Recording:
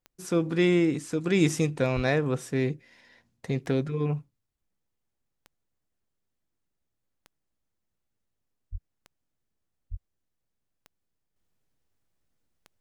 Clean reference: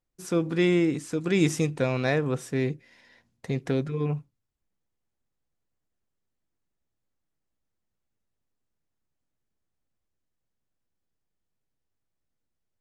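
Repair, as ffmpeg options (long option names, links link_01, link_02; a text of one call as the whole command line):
ffmpeg -i in.wav -filter_complex "[0:a]adeclick=threshold=4,asplit=3[link_01][link_02][link_03];[link_01]afade=type=out:start_time=1.95:duration=0.02[link_04];[link_02]highpass=frequency=140:width=0.5412,highpass=frequency=140:width=1.3066,afade=type=in:start_time=1.95:duration=0.02,afade=type=out:start_time=2.07:duration=0.02[link_05];[link_03]afade=type=in:start_time=2.07:duration=0.02[link_06];[link_04][link_05][link_06]amix=inputs=3:normalize=0,asplit=3[link_07][link_08][link_09];[link_07]afade=type=out:start_time=8.71:duration=0.02[link_10];[link_08]highpass=frequency=140:width=0.5412,highpass=frequency=140:width=1.3066,afade=type=in:start_time=8.71:duration=0.02,afade=type=out:start_time=8.83:duration=0.02[link_11];[link_09]afade=type=in:start_time=8.83:duration=0.02[link_12];[link_10][link_11][link_12]amix=inputs=3:normalize=0,asplit=3[link_13][link_14][link_15];[link_13]afade=type=out:start_time=9.9:duration=0.02[link_16];[link_14]highpass=frequency=140:width=0.5412,highpass=frequency=140:width=1.3066,afade=type=in:start_time=9.9:duration=0.02,afade=type=out:start_time=10.02:duration=0.02[link_17];[link_15]afade=type=in:start_time=10.02:duration=0.02[link_18];[link_16][link_17][link_18]amix=inputs=3:normalize=0,asetnsamples=nb_out_samples=441:pad=0,asendcmd='11.36 volume volume -6dB',volume=0dB" out.wav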